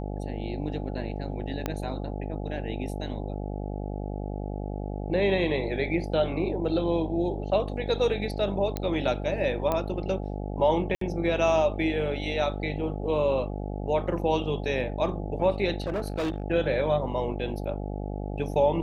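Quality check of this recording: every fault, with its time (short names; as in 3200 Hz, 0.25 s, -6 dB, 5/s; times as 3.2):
buzz 50 Hz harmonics 17 -33 dBFS
1.66 pop -14 dBFS
8.77 pop -16 dBFS
9.72 pop -14 dBFS
10.95–11.01 gap 63 ms
15.82–16.42 clipped -25 dBFS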